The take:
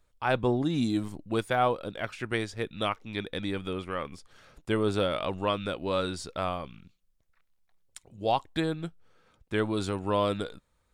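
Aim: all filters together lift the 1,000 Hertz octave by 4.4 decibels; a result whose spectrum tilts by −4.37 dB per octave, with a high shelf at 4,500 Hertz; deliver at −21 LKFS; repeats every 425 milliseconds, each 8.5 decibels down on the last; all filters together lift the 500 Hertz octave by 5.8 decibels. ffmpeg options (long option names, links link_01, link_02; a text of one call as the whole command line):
ffmpeg -i in.wav -af "equalizer=frequency=500:width_type=o:gain=6,equalizer=frequency=1000:width_type=o:gain=3.5,highshelf=frequency=4500:gain=3,aecho=1:1:425|850|1275|1700:0.376|0.143|0.0543|0.0206,volume=5.5dB" out.wav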